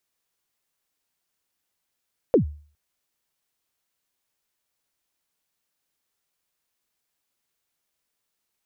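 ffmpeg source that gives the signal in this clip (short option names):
-f lavfi -i "aevalsrc='0.316*pow(10,-3*t/0.43)*sin(2*PI*(560*0.108/log(74/560)*(exp(log(74/560)*min(t,0.108)/0.108)-1)+74*max(t-0.108,0)))':d=0.41:s=44100"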